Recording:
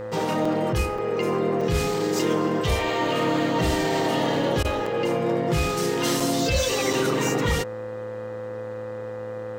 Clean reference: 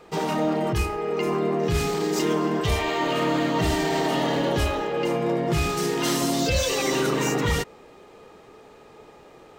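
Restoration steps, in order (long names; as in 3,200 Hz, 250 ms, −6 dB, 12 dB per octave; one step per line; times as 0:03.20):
hum removal 110.6 Hz, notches 18
notch filter 510 Hz, Q 30
repair the gap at 0:00.45/0:00.98/0:01.61/0:04.86/0:06.20/0:06.93, 4.2 ms
repair the gap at 0:04.63, 15 ms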